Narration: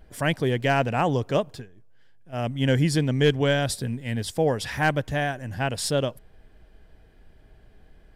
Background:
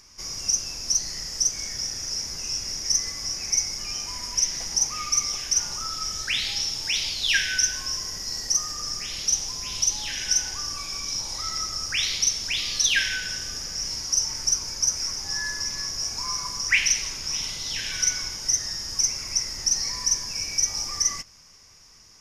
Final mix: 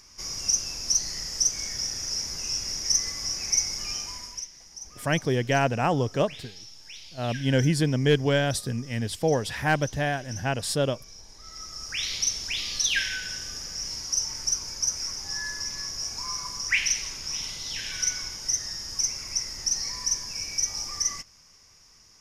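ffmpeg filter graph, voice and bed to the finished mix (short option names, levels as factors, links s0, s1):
-filter_complex "[0:a]adelay=4850,volume=0.891[s0];[1:a]volume=5.31,afade=t=out:st=3.91:d=0.57:silence=0.125893,afade=t=in:st=11.4:d=0.78:silence=0.177828[s1];[s0][s1]amix=inputs=2:normalize=0"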